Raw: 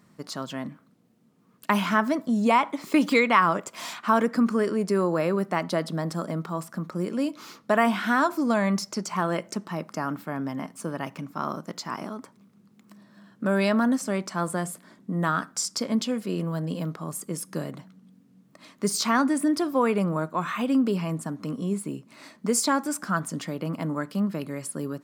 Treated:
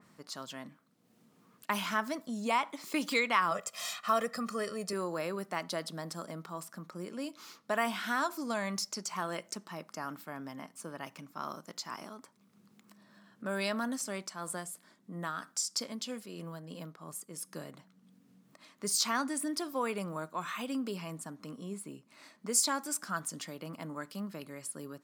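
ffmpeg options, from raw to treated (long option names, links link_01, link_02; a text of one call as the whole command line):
ffmpeg -i in.wav -filter_complex "[0:a]asettb=1/sr,asplit=3[link_01][link_02][link_03];[link_01]atrim=end=3.514[link_04];[link_02]atrim=start=3.51:end=4.93,asetpts=PTS-STARTPTS,afade=type=in:duration=0.004:curve=qsin,afade=type=out:start_time=1.416:duration=0.004:curve=qsin,aecho=1:1:1.6:0.82,atrim=end_sample=62622[link_05];[link_03]atrim=start=4.926[link_06];[link_04][link_05]acrossfade=duration=0.004:curve1=hsin:curve2=qsin[link_07];[link_07][link_06]acrossfade=duration=0.004:curve1=qsin:curve2=hsin,asettb=1/sr,asplit=3[link_08][link_09][link_10];[link_08]atrim=end=14.214[link_11];[link_09]atrim=start=14.21:end=17.44,asetpts=PTS-STARTPTS,afade=type=in:duration=0.004:curve=qsin,afade=type=out:start_time=3.226:duration=0.004:curve=qsin,tremolo=f=3.1:d=0.41[link_12];[link_10]atrim=start=17.436[link_13];[link_11][link_12]acrossfade=duration=0.004:curve1=hsin:curve2=qsin[link_14];[link_14][link_13]acrossfade=duration=0.004:curve1=qsin:curve2=hsin,lowshelf=frequency=430:gain=-7.5,acompressor=mode=upward:threshold=-45dB:ratio=2.5,adynamicequalizer=threshold=0.00708:dfrequency=3000:dqfactor=0.7:tfrequency=3000:tqfactor=0.7:attack=5:release=100:ratio=0.375:range=3.5:mode=boostabove:tftype=highshelf,volume=-8dB" out.wav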